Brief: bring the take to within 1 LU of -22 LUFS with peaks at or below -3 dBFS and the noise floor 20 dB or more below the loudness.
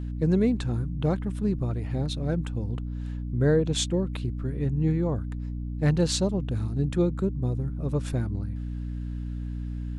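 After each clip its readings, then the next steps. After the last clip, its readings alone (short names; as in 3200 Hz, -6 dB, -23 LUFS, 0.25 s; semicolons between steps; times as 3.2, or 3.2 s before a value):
hum 60 Hz; harmonics up to 300 Hz; hum level -29 dBFS; loudness -28.0 LUFS; peak -11.5 dBFS; loudness target -22.0 LUFS
-> notches 60/120/180/240/300 Hz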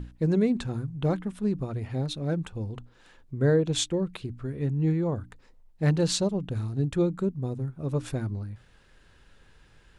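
hum none; loudness -28.5 LUFS; peak -12.5 dBFS; loudness target -22.0 LUFS
-> gain +6.5 dB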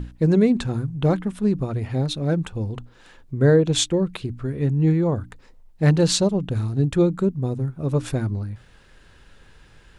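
loudness -22.0 LUFS; peak -6.0 dBFS; noise floor -52 dBFS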